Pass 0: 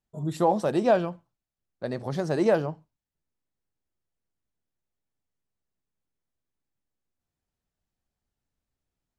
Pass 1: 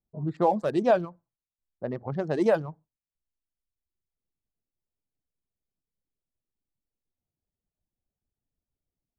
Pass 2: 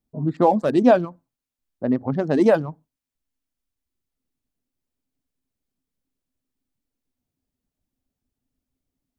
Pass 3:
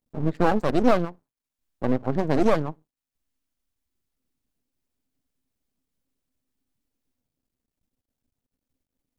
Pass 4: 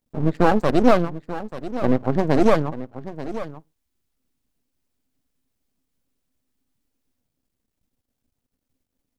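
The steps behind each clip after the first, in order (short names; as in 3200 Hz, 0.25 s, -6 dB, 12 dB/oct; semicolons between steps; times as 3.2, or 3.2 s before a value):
Wiener smoothing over 15 samples; low-pass opened by the level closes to 690 Hz, open at -20 dBFS; reverb removal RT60 1.1 s
bell 260 Hz +13 dB 0.28 oct; gain +5.5 dB
in parallel at +2 dB: limiter -14.5 dBFS, peak gain reduction 11 dB; on the sum: half-wave rectifier; gain -4.5 dB
echo 0.886 s -13.5 dB; gain +4 dB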